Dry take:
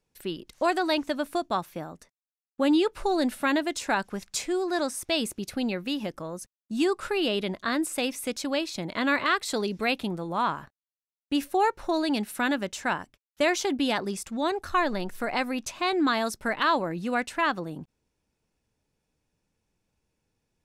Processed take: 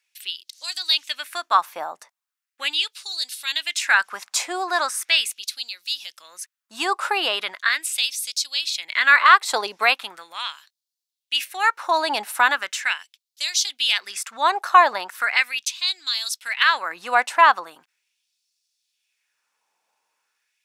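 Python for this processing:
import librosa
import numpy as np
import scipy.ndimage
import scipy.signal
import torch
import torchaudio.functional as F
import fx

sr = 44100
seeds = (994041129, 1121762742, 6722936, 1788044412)

y = fx.transient(x, sr, attack_db=3, sustain_db=-4, at=(9.28, 10.02))
y = fx.filter_lfo_highpass(y, sr, shape='sine', hz=0.39, low_hz=840.0, high_hz=4500.0, q=2.2)
y = y * 10.0 ** (7.5 / 20.0)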